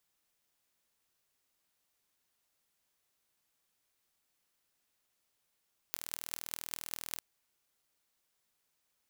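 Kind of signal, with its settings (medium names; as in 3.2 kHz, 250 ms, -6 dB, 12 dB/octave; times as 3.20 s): pulse train 40.1 per s, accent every 8, -8 dBFS 1.27 s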